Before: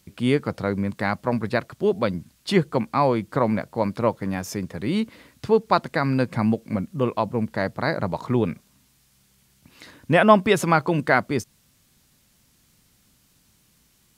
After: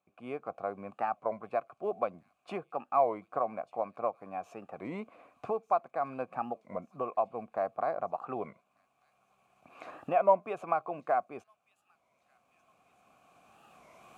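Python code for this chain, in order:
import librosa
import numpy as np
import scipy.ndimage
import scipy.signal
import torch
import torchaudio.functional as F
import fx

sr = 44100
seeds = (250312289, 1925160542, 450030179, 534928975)

p1 = fx.recorder_agc(x, sr, target_db=-5.5, rise_db_per_s=10.0, max_gain_db=30)
p2 = fx.band_shelf(p1, sr, hz=3800.0, db=-10.5, octaves=1.2)
p3 = fx.sample_hold(p2, sr, seeds[0], rate_hz=11000.0, jitter_pct=20)
p4 = p2 + (p3 * librosa.db_to_amplitude(-11.0))
p5 = fx.vowel_filter(p4, sr, vowel='a')
p6 = p5 + fx.echo_wet_highpass(p5, sr, ms=1193, feedback_pct=60, hz=4600.0, wet_db=-13.5, dry=0)
p7 = fx.record_warp(p6, sr, rpm=33.33, depth_cents=160.0)
y = p7 * librosa.db_to_amplitude(-4.5)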